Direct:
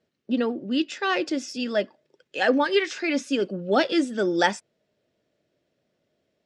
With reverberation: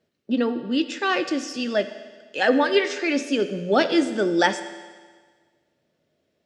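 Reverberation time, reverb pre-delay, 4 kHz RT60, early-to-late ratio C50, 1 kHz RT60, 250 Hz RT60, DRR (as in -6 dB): 1.5 s, 12 ms, 1.5 s, 11.5 dB, 1.5 s, 1.5 s, 10.0 dB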